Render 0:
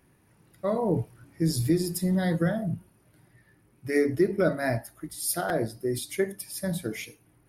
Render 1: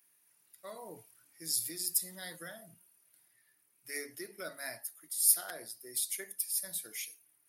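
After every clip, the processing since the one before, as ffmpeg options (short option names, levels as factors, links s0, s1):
-af "aderivative,volume=1.26"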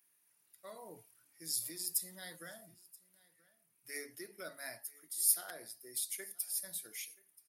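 -af "aecho=1:1:979:0.0668,volume=0.631"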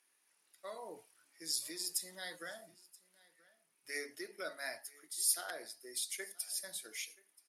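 -af "highpass=310,lowpass=7700,volume=1.68"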